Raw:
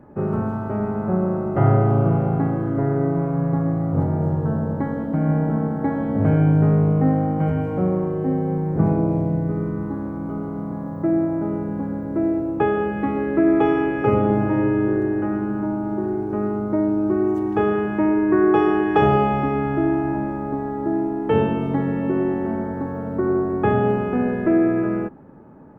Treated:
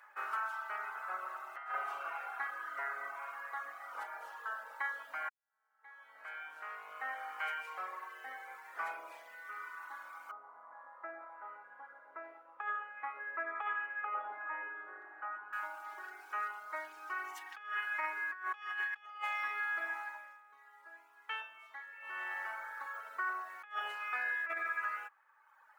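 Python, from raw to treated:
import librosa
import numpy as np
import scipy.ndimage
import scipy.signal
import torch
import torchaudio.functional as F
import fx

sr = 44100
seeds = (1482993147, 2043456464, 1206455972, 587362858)

y = fx.lowpass(x, sr, hz=1100.0, slope=12, at=(10.31, 15.53))
y = fx.edit(y, sr, fx.fade_in_span(start_s=5.29, length_s=2.04, curve='qua'),
    fx.fade_down_up(start_s=20.02, length_s=2.39, db=-12.0, fade_s=0.41), tone=tone)
y = fx.dereverb_blind(y, sr, rt60_s=1.4)
y = scipy.signal.sosfilt(scipy.signal.butter(4, 1400.0, 'highpass', fs=sr, output='sos'), y)
y = fx.over_compress(y, sr, threshold_db=-42.0, ratio=-0.5)
y = F.gain(torch.from_numpy(y), 5.5).numpy()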